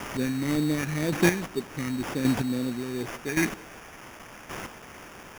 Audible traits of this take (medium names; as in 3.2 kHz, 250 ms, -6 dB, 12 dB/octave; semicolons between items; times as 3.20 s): phasing stages 2, 2 Hz, lowest notch 640–1800 Hz; a quantiser's noise floor 8-bit, dither triangular; chopped level 0.89 Hz, depth 65%, duty 15%; aliases and images of a low sample rate 4.1 kHz, jitter 0%